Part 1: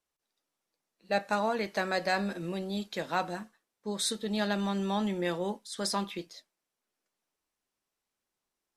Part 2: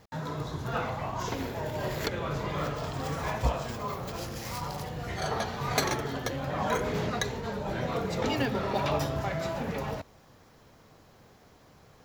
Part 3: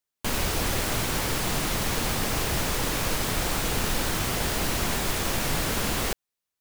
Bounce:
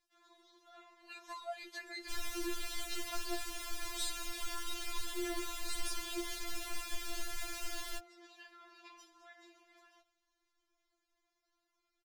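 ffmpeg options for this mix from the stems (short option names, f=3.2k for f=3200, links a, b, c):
-filter_complex "[0:a]alimiter=limit=-23dB:level=0:latency=1:release=101,acompressor=threshold=-34dB:ratio=4,volume=1dB,asplit=2[a][b];[1:a]lowpass=10k,volume=-18.5dB,asplit=2[c][d];[d]volume=-16.5dB[e];[2:a]highshelf=f=12k:g=-8,bandreject=f=50:t=h:w=6,bandreject=f=100:t=h:w=6,bandreject=f=150:t=h:w=6,bandreject=f=200:t=h:w=6,bandreject=f=250:t=h:w=6,bandreject=f=300:t=h:w=6,bandreject=f=350:t=h:w=6,adelay=1850,volume=-10dB[f];[b]apad=whole_len=531016[g];[c][g]sidechaincompress=threshold=-40dB:ratio=8:attack=16:release=138[h];[e]aecho=0:1:78|156|234|312|390|468|546:1|0.48|0.23|0.111|0.0531|0.0255|0.0122[i];[a][h][f][i]amix=inputs=4:normalize=0,equalizer=f=510:w=0.55:g=-8.5,afftfilt=real='re*4*eq(mod(b,16),0)':imag='im*4*eq(mod(b,16),0)':win_size=2048:overlap=0.75"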